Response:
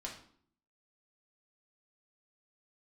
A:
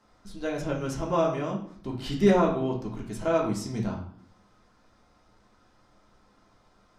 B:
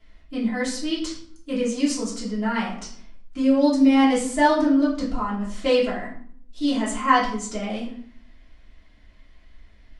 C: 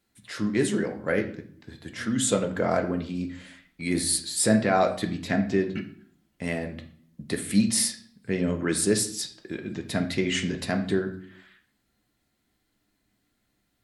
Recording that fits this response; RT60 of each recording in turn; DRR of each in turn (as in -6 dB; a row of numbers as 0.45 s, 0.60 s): A; 0.55 s, 0.55 s, 0.55 s; -3.0 dB, -9.5 dB, 4.0 dB